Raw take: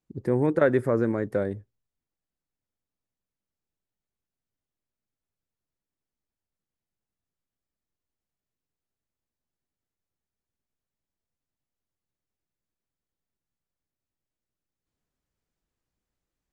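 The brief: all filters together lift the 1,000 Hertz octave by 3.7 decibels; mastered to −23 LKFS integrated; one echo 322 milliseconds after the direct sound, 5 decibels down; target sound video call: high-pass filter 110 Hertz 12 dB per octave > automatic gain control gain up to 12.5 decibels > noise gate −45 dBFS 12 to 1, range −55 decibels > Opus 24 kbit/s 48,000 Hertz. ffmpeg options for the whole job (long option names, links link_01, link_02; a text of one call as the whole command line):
ffmpeg -i in.wav -af "highpass=110,equalizer=frequency=1000:width_type=o:gain=5,aecho=1:1:322:0.562,dynaudnorm=maxgain=12.5dB,agate=range=-55dB:threshold=-45dB:ratio=12,volume=1dB" -ar 48000 -c:a libopus -b:a 24k out.opus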